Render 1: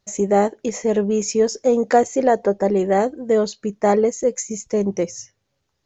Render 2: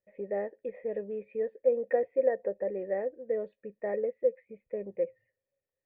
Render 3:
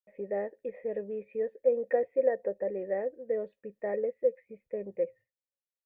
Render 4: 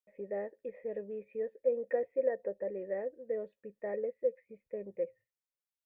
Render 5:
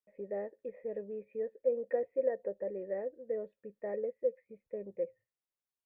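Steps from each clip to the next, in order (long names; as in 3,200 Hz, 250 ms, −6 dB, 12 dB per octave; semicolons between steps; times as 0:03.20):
formant resonators in series e; level −4.5 dB
noise gate with hold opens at −59 dBFS
notch filter 750 Hz, Q 12; level −4.5 dB
high-shelf EQ 2,000 Hz −8 dB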